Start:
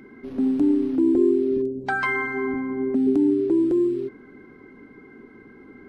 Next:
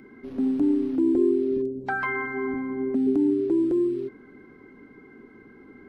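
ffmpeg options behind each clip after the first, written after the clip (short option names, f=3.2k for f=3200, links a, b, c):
-filter_complex "[0:a]acrossover=split=2500[a][b];[b]acompressor=threshold=-49dB:ratio=4:attack=1:release=60[c];[a][c]amix=inputs=2:normalize=0,volume=-2.5dB"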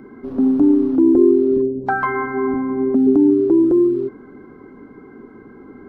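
-af "highshelf=f=1.6k:t=q:w=1.5:g=-8.5,volume=8.5dB"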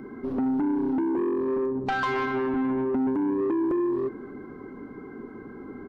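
-af "acompressor=threshold=-18dB:ratio=8,asoftclip=type=tanh:threshold=-22dB,aecho=1:1:242:0.112"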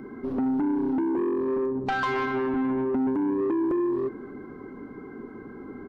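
-af anull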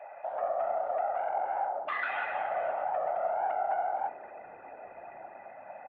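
-filter_complex "[0:a]highpass=f=200:t=q:w=0.5412,highpass=f=200:t=q:w=1.307,lowpass=f=2.9k:t=q:w=0.5176,lowpass=f=2.9k:t=q:w=0.7071,lowpass=f=2.9k:t=q:w=1.932,afreqshift=400,afftfilt=real='hypot(re,im)*cos(2*PI*random(0))':imag='hypot(re,im)*sin(2*PI*random(1))':win_size=512:overlap=0.75,asplit=5[a][b][c][d][e];[b]adelay=474,afreqshift=-130,volume=-24dB[f];[c]adelay=948,afreqshift=-260,volume=-29dB[g];[d]adelay=1422,afreqshift=-390,volume=-34.1dB[h];[e]adelay=1896,afreqshift=-520,volume=-39.1dB[i];[a][f][g][h][i]amix=inputs=5:normalize=0"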